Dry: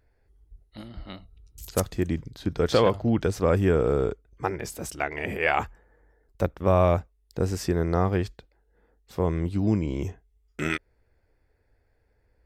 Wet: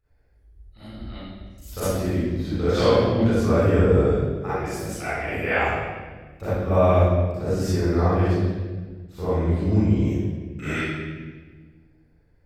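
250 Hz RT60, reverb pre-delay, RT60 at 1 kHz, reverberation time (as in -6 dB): 2.2 s, 33 ms, 1.2 s, 1.4 s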